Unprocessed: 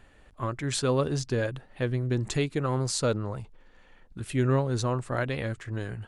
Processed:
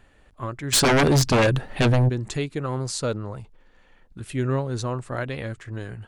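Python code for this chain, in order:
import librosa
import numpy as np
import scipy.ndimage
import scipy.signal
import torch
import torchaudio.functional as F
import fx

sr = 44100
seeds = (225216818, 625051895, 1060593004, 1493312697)

y = fx.fold_sine(x, sr, drive_db=12, ceiling_db=-14.0, at=(0.72, 2.08), fade=0.02)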